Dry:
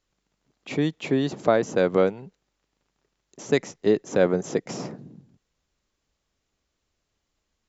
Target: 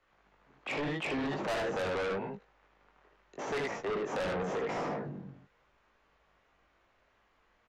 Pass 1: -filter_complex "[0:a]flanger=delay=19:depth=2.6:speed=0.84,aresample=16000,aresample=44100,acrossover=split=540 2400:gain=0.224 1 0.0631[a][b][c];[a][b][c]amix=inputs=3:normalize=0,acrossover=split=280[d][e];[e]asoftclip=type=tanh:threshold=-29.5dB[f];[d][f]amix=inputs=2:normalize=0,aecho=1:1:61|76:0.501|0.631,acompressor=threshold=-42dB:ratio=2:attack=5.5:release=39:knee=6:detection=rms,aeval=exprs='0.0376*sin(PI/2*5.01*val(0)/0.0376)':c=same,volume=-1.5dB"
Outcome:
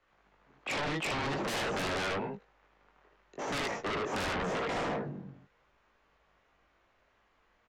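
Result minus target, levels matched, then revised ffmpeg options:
compressor: peak gain reduction -5 dB
-filter_complex "[0:a]flanger=delay=19:depth=2.6:speed=0.84,aresample=16000,aresample=44100,acrossover=split=540 2400:gain=0.224 1 0.0631[a][b][c];[a][b][c]amix=inputs=3:normalize=0,acrossover=split=280[d][e];[e]asoftclip=type=tanh:threshold=-29.5dB[f];[d][f]amix=inputs=2:normalize=0,aecho=1:1:61|76:0.501|0.631,acompressor=threshold=-52.5dB:ratio=2:attack=5.5:release=39:knee=6:detection=rms,aeval=exprs='0.0376*sin(PI/2*5.01*val(0)/0.0376)':c=same,volume=-1.5dB"

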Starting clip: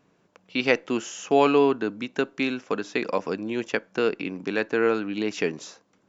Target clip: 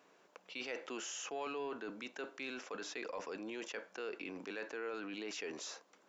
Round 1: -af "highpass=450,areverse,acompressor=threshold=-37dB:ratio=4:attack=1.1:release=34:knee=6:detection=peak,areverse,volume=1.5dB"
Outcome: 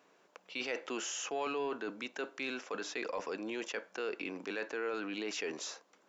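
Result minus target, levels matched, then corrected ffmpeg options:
compressor: peak gain reduction -5 dB
-af "highpass=450,areverse,acompressor=threshold=-44dB:ratio=4:attack=1.1:release=34:knee=6:detection=peak,areverse,volume=1.5dB"

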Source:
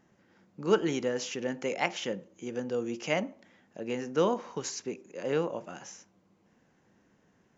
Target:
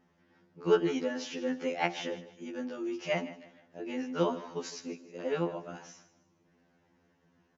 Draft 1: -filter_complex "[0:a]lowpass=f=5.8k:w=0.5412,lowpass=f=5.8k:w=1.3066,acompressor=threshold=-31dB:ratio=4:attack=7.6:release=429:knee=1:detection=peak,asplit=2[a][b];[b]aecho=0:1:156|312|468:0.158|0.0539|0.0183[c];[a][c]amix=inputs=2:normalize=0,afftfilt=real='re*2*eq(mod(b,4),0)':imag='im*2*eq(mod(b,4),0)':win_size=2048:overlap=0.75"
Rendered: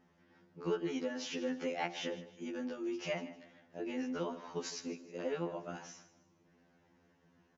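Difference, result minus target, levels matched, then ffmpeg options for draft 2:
compressor: peak gain reduction +12.5 dB
-filter_complex "[0:a]lowpass=f=5.8k:w=0.5412,lowpass=f=5.8k:w=1.3066,asplit=2[a][b];[b]aecho=0:1:156|312|468:0.158|0.0539|0.0183[c];[a][c]amix=inputs=2:normalize=0,afftfilt=real='re*2*eq(mod(b,4),0)':imag='im*2*eq(mod(b,4),0)':win_size=2048:overlap=0.75"

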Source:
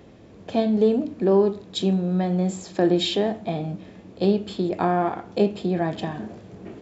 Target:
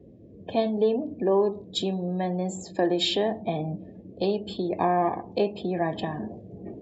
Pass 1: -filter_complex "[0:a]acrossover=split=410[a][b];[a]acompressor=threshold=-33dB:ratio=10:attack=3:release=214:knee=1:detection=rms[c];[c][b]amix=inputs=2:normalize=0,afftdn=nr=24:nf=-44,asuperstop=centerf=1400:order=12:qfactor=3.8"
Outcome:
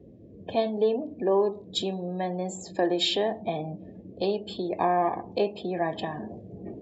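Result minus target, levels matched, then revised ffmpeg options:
compressor: peak gain reduction +5.5 dB
-filter_complex "[0:a]acrossover=split=410[a][b];[a]acompressor=threshold=-27dB:ratio=10:attack=3:release=214:knee=1:detection=rms[c];[c][b]amix=inputs=2:normalize=0,afftdn=nr=24:nf=-44,asuperstop=centerf=1400:order=12:qfactor=3.8"

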